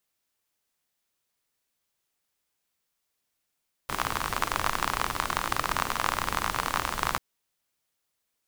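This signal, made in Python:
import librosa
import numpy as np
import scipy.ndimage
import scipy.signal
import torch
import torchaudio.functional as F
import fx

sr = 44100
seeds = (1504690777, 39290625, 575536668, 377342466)

y = fx.rain(sr, seeds[0], length_s=3.29, drops_per_s=41.0, hz=1100.0, bed_db=-5.5)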